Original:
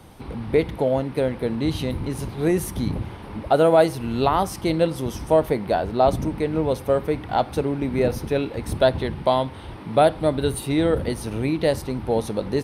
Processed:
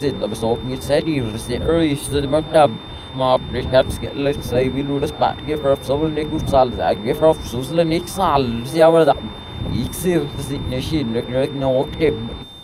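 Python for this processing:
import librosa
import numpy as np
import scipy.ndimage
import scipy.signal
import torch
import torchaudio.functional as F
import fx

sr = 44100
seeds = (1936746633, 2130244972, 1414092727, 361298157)

y = np.flip(x).copy()
y = y + 10.0 ** (-41.0 / 20.0) * np.sin(2.0 * np.pi * 3600.0 * np.arange(len(y)) / sr)
y = fx.hum_notches(y, sr, base_hz=50, count=9)
y = y * 10.0 ** (4.0 / 20.0)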